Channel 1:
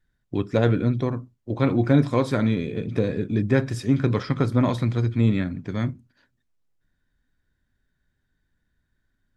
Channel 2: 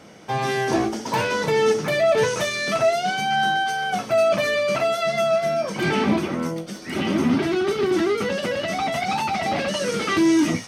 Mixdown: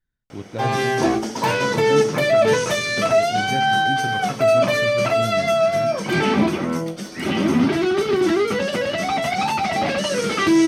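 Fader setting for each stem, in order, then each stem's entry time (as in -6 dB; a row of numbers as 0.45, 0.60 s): -9.0, +2.5 dB; 0.00, 0.30 s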